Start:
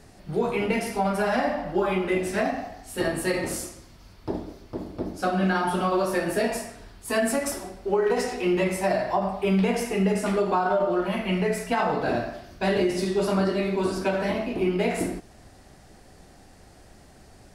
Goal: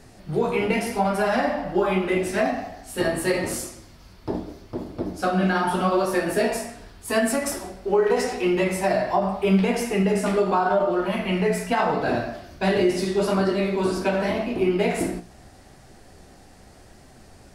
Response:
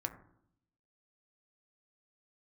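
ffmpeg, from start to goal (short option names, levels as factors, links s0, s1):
-af "flanger=delay=7.7:depth=9.3:regen=66:speed=0.82:shape=sinusoidal,volume=2.11"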